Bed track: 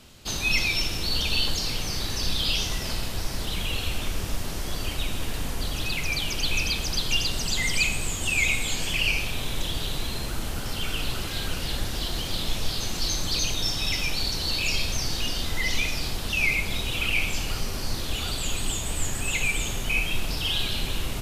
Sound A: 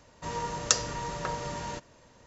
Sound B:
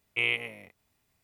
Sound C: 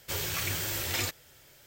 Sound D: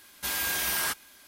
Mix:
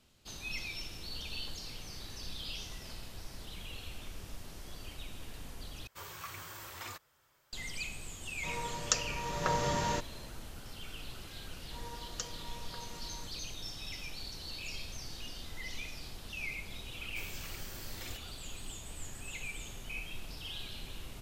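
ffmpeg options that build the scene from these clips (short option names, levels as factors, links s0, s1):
-filter_complex "[3:a]asplit=2[s0][s1];[1:a]asplit=2[s2][s3];[0:a]volume=0.15[s4];[s0]equalizer=f=1100:t=o:w=0.8:g=14.5[s5];[s2]dynaudnorm=f=160:g=5:m=3.35[s6];[s3]aecho=1:1:4.2:0.51[s7];[s4]asplit=2[s8][s9];[s8]atrim=end=5.874[s10];[s5]atrim=end=1.66,asetpts=PTS-STARTPTS,volume=0.158[s11];[s9]atrim=start=7.526[s12];[s6]atrim=end=2.26,asetpts=PTS-STARTPTS,volume=0.473,afade=t=in:d=0.004:c=hsin,afade=t=out:st=2.256:d=0.004:c=hsin,adelay=8210[s13];[s7]atrim=end=2.26,asetpts=PTS-STARTPTS,volume=0.133,afade=t=in:d=0.004:c=hsin,afade=t=out:st=2.256:d=0.004:c=hsin,adelay=11490[s14];[s1]atrim=end=1.66,asetpts=PTS-STARTPTS,volume=0.168,afade=t=in:d=0.004:c=hsin,afade=t=out:st=1.656:d=0.004:c=hsin,adelay=17070[s15];[s10][s11]acrossfade=d=0.004:c1=hsin:c2=hsin[s16];[s16][s12]acrossfade=d=0.004:c1=hsin:c2=hsin[s17];[s17][s13][s14][s15]amix=inputs=4:normalize=0"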